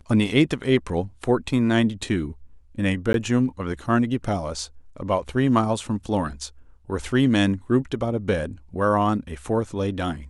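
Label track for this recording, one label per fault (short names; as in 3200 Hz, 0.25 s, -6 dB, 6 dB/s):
3.130000	3.140000	gap 12 ms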